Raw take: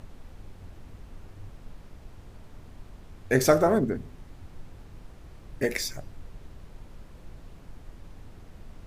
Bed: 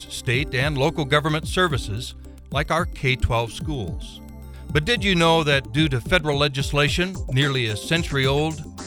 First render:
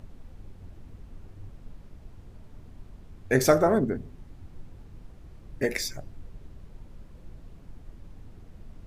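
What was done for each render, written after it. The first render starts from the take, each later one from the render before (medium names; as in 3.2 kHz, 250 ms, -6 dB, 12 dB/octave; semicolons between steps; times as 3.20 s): noise reduction 6 dB, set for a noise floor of -49 dBFS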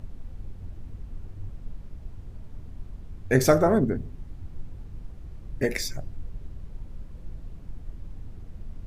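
bass shelf 160 Hz +8 dB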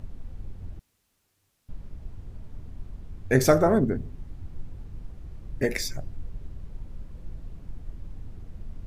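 0.79–1.69 s: differentiator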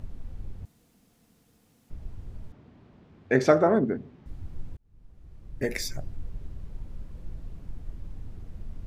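0.65–1.90 s: room tone; 2.52–4.26 s: band-pass 190–3700 Hz; 4.77–6.08 s: fade in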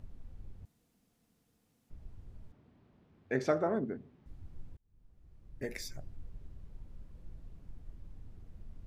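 trim -10.5 dB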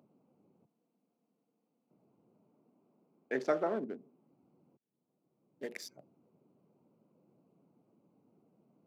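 local Wiener filter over 25 samples; Bessel high-pass 290 Hz, order 8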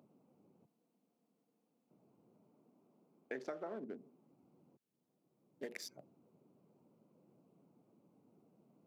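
compression 10:1, threshold -40 dBFS, peak gain reduction 15.5 dB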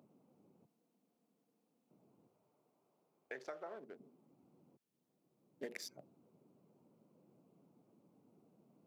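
2.27–4.00 s: peaking EQ 230 Hz -14 dB 1.4 oct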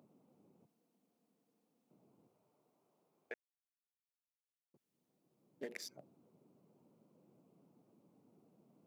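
3.34–4.74 s: mute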